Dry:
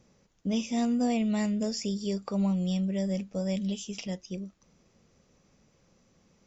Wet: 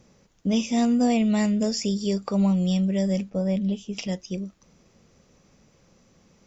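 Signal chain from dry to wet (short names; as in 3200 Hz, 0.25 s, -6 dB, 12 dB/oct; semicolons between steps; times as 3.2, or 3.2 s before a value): 3.29–3.96 LPF 1700 Hz -> 1000 Hz 6 dB/oct; gain +6 dB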